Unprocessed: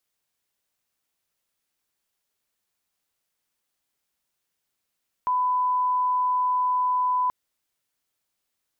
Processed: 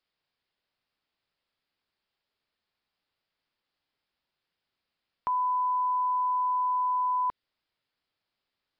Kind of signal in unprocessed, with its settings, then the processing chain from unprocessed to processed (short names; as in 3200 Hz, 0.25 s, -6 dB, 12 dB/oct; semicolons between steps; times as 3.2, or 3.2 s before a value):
line-up tone -20 dBFS 2.03 s
dynamic EQ 900 Hz, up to -4 dB, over -37 dBFS, Q 1.1; downsampling 11025 Hz